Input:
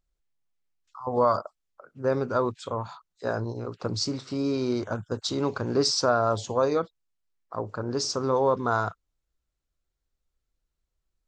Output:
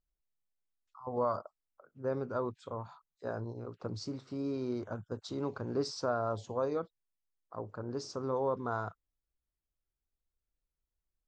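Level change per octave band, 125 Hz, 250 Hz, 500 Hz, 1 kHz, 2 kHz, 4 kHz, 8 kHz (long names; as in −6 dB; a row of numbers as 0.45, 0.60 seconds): −8.5, −8.5, −9.0, −10.5, −12.0, −16.5, −17.0 decibels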